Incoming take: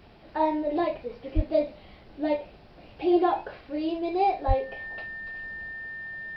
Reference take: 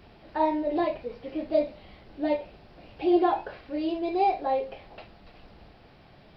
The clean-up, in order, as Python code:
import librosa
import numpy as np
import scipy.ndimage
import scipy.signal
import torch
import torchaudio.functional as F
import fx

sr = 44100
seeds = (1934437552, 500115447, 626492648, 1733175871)

y = fx.notch(x, sr, hz=1800.0, q=30.0)
y = fx.highpass(y, sr, hz=140.0, slope=24, at=(1.35, 1.47), fade=0.02)
y = fx.highpass(y, sr, hz=140.0, slope=24, at=(4.47, 4.59), fade=0.02)